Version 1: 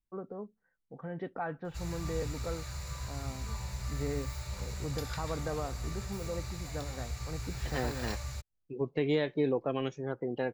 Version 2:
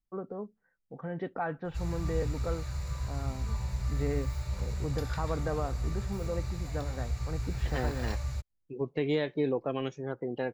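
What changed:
first voice +3.0 dB; background: add tilt -1.5 dB/oct

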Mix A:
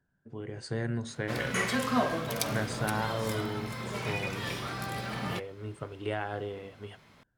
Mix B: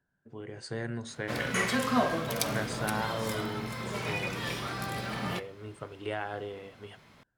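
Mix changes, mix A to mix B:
speech: add low shelf 270 Hz -6 dB; reverb: on, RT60 0.70 s

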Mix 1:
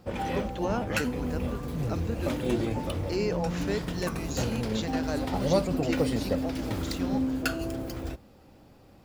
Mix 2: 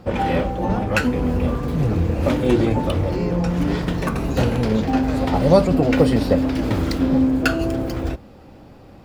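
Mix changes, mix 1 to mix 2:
background +11.0 dB; master: add high shelf 4900 Hz -10 dB

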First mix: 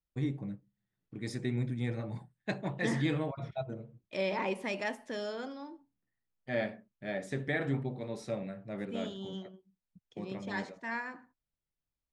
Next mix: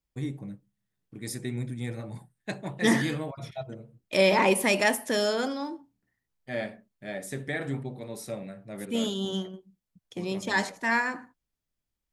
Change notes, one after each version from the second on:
second voice +11.0 dB; master: remove air absorption 110 m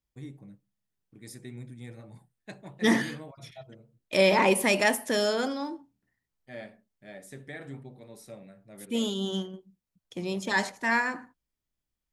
first voice -9.5 dB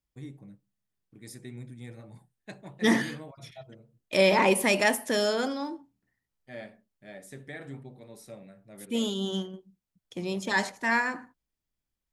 none

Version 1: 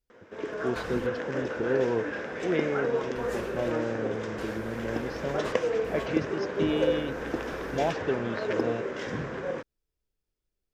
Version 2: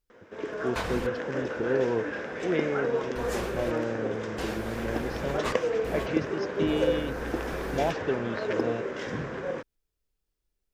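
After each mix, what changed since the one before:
second voice +7.5 dB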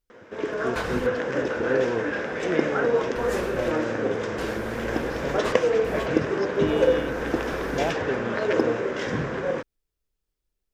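background +6.0 dB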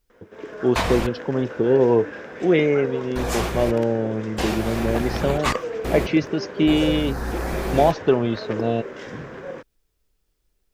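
first voice +11.0 dB; second voice +10.5 dB; background -7.5 dB

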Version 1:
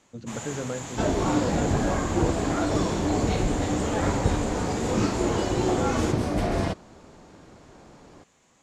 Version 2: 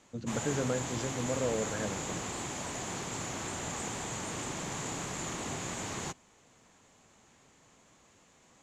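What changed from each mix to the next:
second sound: muted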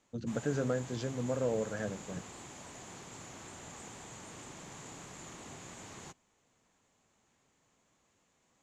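background -11.0 dB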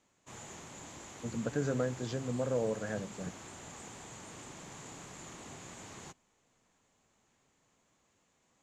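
speech: entry +1.10 s

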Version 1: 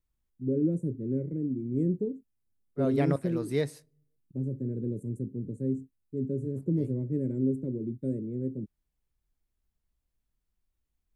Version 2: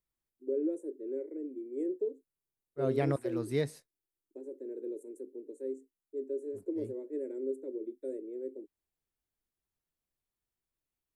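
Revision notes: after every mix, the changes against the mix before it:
first voice: add steep high-pass 330 Hz 48 dB/oct; reverb: off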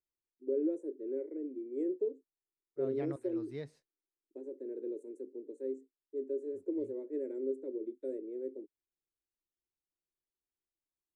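second voice -11.5 dB; master: add air absorption 82 m

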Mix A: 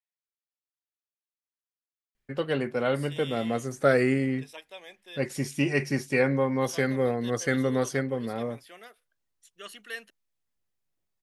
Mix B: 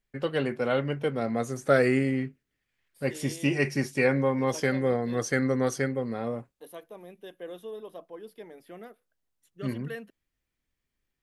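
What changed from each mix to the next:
first voice: entry -2.15 s; second voice: remove weighting filter ITU-R 468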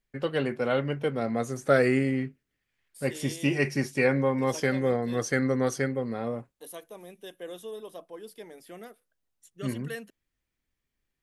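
second voice: add bell 7600 Hz +14 dB 1.5 oct

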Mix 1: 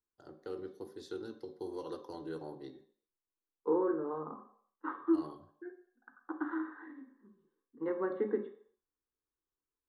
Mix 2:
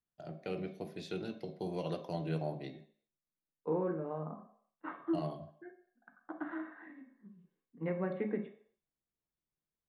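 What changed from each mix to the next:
second voice -5.5 dB; master: remove fixed phaser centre 650 Hz, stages 6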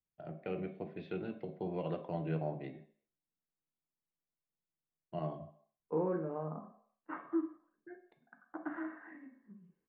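second voice: entry +2.25 s; master: add LPF 2700 Hz 24 dB/oct

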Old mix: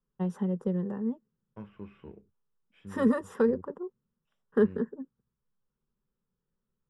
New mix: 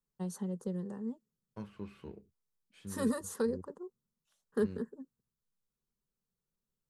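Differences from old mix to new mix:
first voice -7.5 dB; master: remove polynomial smoothing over 25 samples

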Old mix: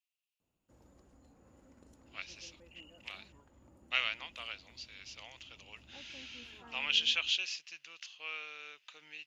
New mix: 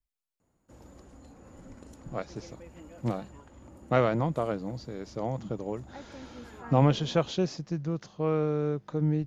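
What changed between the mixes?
speech: remove resonant high-pass 2700 Hz, resonance Q 6.7; background +11.5 dB

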